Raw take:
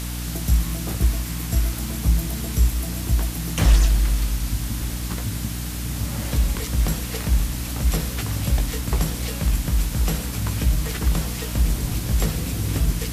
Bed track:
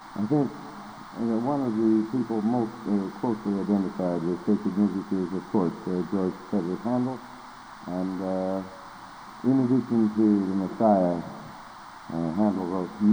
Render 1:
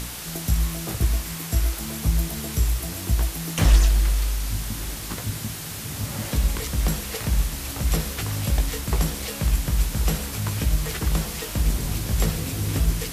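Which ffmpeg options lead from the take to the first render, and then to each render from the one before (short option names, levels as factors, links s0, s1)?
-af "bandreject=f=60:t=h:w=4,bandreject=f=120:t=h:w=4,bandreject=f=180:t=h:w=4,bandreject=f=240:t=h:w=4,bandreject=f=300:t=h:w=4"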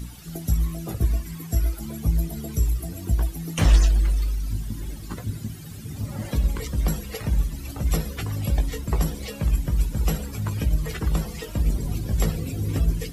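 -af "afftdn=nr=16:nf=-34"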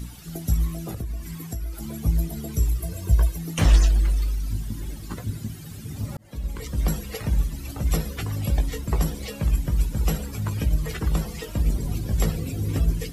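-filter_complex "[0:a]asettb=1/sr,asplit=3[s0][s1][s2];[s0]atrim=end=0.824[s3];[s1]atrim=start=0.82:end=1.91,asetpts=PTS-STARTPTS,afade=t=in:d=0.004:c=qsin,afade=t=out:st=1.086:d=0.004:c=qsin,acompressor=threshold=0.0447:ratio=6:attack=3.2:release=140:knee=1:detection=peak[s4];[s2]atrim=start=1.906[s5];[s3][s4]acrossfade=d=0.004:c1=hsin:c2=qsin[s6];[s6][s5]acrossfade=d=0.004:c1=qsin:c2=hsin,asettb=1/sr,asplit=3[s7][s8][s9];[s7]atrim=end=2.824[s10];[s8]atrim=start=2.82:end=3.38,asetpts=PTS-STARTPTS,afade=t=in:d=0.004:c=qsin,afade=t=out:st=0.556:d=0.004:c=qsin,aecho=1:1:1.9:0.68,atrim=end_sample=24696[s11];[s9]atrim=start=3.376[s12];[s10][s11]acrossfade=d=0.004:c1=hsin:c2=qsin[s13];[s13][s12]acrossfade=d=0.004:c1=qsin:c2=hsin,asplit=2[s14][s15];[s14]atrim=end=6.17,asetpts=PTS-STARTPTS,afade=t=out:st=6.166:d=0.004:c=hsin[s16];[s15]atrim=start=6.17,asetpts=PTS-STARTPTS,afade=t=in:d=0.67[s17];[s16][s17]concat=n=2:v=0:a=1"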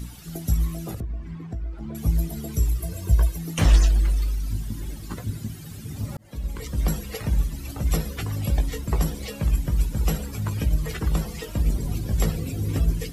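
-filter_complex "[0:a]asettb=1/sr,asplit=3[s0][s1][s2];[s0]atrim=end=1.004[s3];[s1]atrim=start=1:end=1.95,asetpts=PTS-STARTPTS,afade=t=in:d=0.004:c=qsin,afade=t=out:st=0.946:d=0.004:c=qsin,adynamicsmooth=sensitivity=1.5:basefreq=2000[s4];[s2]atrim=start=1.946[s5];[s3][s4]acrossfade=d=0.004:c1=hsin:c2=qsin[s6];[s6][s5]acrossfade=d=0.004:c1=qsin:c2=hsin"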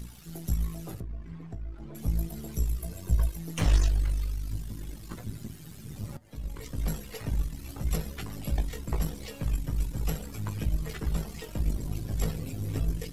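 -af "aeval=exprs='if(lt(val(0),0),0.447*val(0),val(0))':c=same,flanger=delay=4.9:depth=2.7:regen=-76:speed=0.36:shape=sinusoidal"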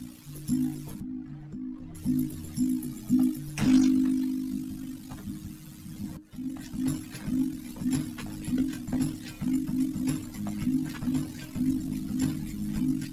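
-af "afreqshift=-310"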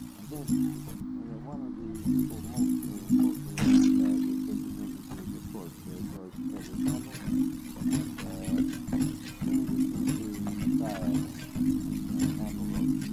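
-filter_complex "[1:a]volume=0.133[s0];[0:a][s0]amix=inputs=2:normalize=0"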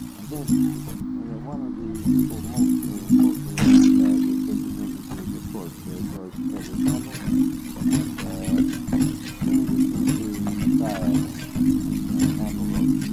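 -af "volume=2.37"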